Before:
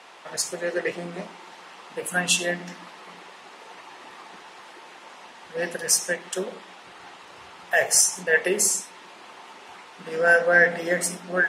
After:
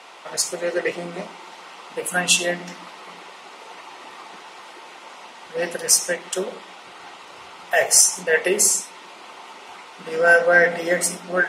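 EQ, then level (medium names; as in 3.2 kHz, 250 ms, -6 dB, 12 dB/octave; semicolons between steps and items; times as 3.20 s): bass shelf 160 Hz -8 dB; band-stop 1.7 kHz, Q 9.6; +4.5 dB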